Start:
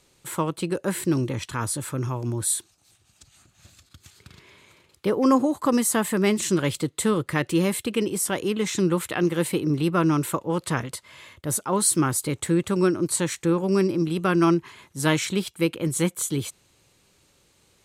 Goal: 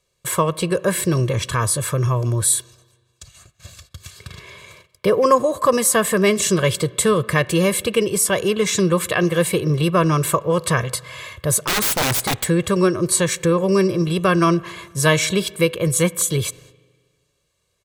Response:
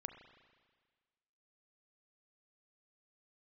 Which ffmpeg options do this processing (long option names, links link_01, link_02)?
-filter_complex "[0:a]agate=range=-20dB:threshold=-56dB:ratio=16:detection=peak,aecho=1:1:1.8:0.78,asplit=2[link_01][link_02];[link_02]acompressor=threshold=-29dB:ratio=6,volume=1.5dB[link_03];[link_01][link_03]amix=inputs=2:normalize=0,asplit=3[link_04][link_05][link_06];[link_04]afade=type=out:start_time=11.57:duration=0.02[link_07];[link_05]aeval=exprs='(mod(6.68*val(0)+1,2)-1)/6.68':channel_layout=same,afade=type=in:start_time=11.57:duration=0.02,afade=type=out:start_time=12.43:duration=0.02[link_08];[link_06]afade=type=in:start_time=12.43:duration=0.02[link_09];[link_07][link_08][link_09]amix=inputs=3:normalize=0,asplit=2[link_10][link_11];[1:a]atrim=start_sample=2205[link_12];[link_11][link_12]afir=irnorm=-1:irlink=0,volume=-6.5dB[link_13];[link_10][link_13]amix=inputs=2:normalize=0"